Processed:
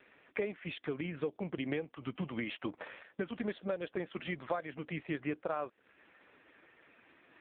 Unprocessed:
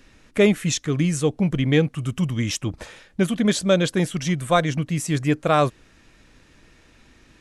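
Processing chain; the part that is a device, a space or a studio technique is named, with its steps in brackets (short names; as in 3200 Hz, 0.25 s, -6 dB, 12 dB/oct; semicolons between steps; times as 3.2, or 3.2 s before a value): voicemail (BPF 390–2700 Hz; compressor 10:1, threshold -33 dBFS, peak gain reduction 19.5 dB; gain +1 dB; AMR-NB 4.75 kbps 8000 Hz)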